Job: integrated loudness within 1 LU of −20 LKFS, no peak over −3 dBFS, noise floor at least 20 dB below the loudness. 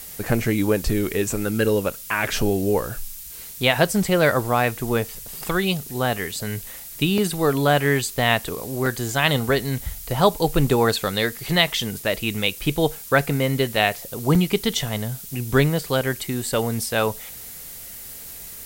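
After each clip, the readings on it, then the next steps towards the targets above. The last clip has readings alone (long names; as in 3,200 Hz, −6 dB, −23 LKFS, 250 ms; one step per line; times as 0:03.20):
number of dropouts 6; longest dropout 3.0 ms; background noise floor −38 dBFS; target noise floor −42 dBFS; integrated loudness −22.0 LKFS; sample peak −3.5 dBFS; target loudness −20.0 LKFS
→ repair the gap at 0:05.15/0:06.32/0:07.18/0:08.86/0:13.76/0:14.35, 3 ms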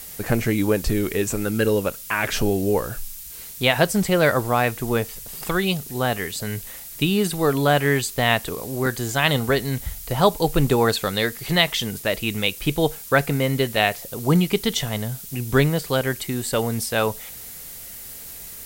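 number of dropouts 0; background noise floor −38 dBFS; target noise floor −42 dBFS
→ broadband denoise 6 dB, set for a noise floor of −38 dBFS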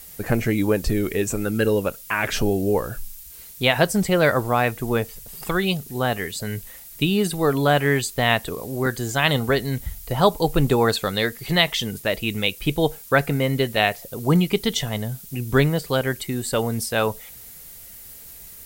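background noise floor −42 dBFS; integrated loudness −22.0 LKFS; sample peak −3.5 dBFS; target loudness −20.0 LKFS
→ level +2 dB
brickwall limiter −3 dBFS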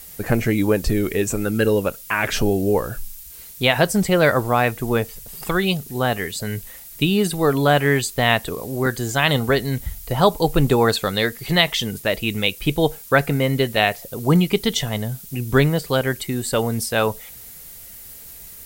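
integrated loudness −20.0 LKFS; sample peak −3.0 dBFS; background noise floor −40 dBFS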